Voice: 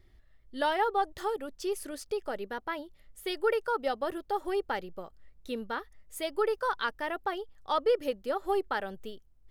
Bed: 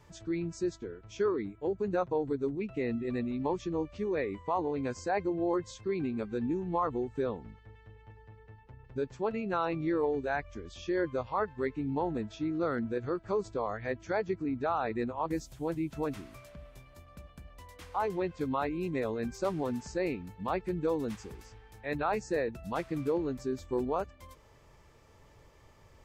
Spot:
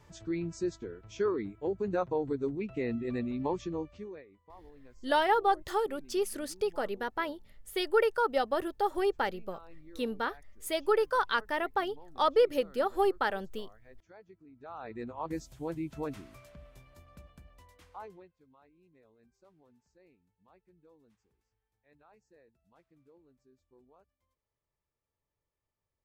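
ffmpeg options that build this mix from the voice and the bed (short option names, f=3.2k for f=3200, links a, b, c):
-filter_complex "[0:a]adelay=4500,volume=2dB[a];[1:a]volume=19.5dB,afade=t=out:st=3.59:d=0.65:silence=0.0749894,afade=t=in:st=14.56:d=0.79:silence=0.1,afade=t=out:st=17.17:d=1.14:silence=0.0375837[b];[a][b]amix=inputs=2:normalize=0"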